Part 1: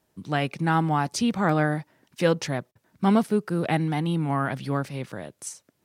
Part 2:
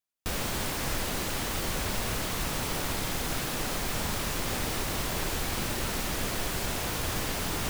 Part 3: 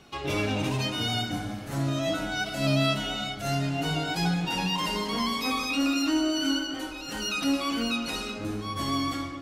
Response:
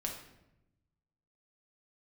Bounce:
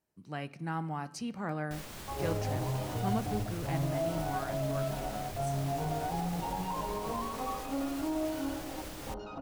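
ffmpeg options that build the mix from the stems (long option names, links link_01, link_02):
-filter_complex "[0:a]bandreject=frequency=3500:width=5.3,volume=-15dB,asplit=2[link_01][link_02];[link_02]volume=-14dB[link_03];[1:a]alimiter=level_in=1.5dB:limit=-24dB:level=0:latency=1:release=186,volume=-1.5dB,adelay=1450,volume=-9dB[link_04];[2:a]afwtdn=0.02,firequalizer=gain_entry='entry(110,0);entry(210,-13);entry(460,-3);entry(780,0);entry(1900,-27)':delay=0.05:min_phase=1,alimiter=level_in=3.5dB:limit=-24dB:level=0:latency=1,volume=-3.5dB,adelay=1950,volume=1.5dB[link_05];[3:a]atrim=start_sample=2205[link_06];[link_03][link_06]afir=irnorm=-1:irlink=0[link_07];[link_01][link_04][link_05][link_07]amix=inputs=4:normalize=0,bandreject=frequency=261.9:width_type=h:width=4,bandreject=frequency=523.8:width_type=h:width=4,bandreject=frequency=785.7:width_type=h:width=4,bandreject=frequency=1047.6:width_type=h:width=4,bandreject=frequency=1309.5:width_type=h:width=4,bandreject=frequency=1571.4:width_type=h:width=4,bandreject=frequency=1833.3:width_type=h:width=4,bandreject=frequency=2095.2:width_type=h:width=4,bandreject=frequency=2357.1:width_type=h:width=4,bandreject=frequency=2619:width_type=h:width=4,bandreject=frequency=2880.9:width_type=h:width=4,bandreject=frequency=3142.8:width_type=h:width=4,bandreject=frequency=3404.7:width_type=h:width=4,bandreject=frequency=3666.6:width_type=h:width=4,bandreject=frequency=3928.5:width_type=h:width=4,bandreject=frequency=4190.4:width_type=h:width=4,bandreject=frequency=4452.3:width_type=h:width=4"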